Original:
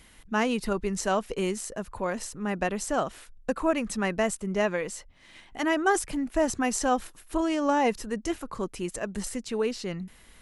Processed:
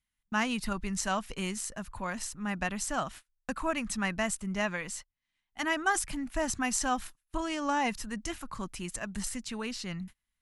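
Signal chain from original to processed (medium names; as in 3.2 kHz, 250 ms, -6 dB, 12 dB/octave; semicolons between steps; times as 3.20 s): gate -41 dBFS, range -31 dB; peaking EQ 440 Hz -15 dB 1.1 oct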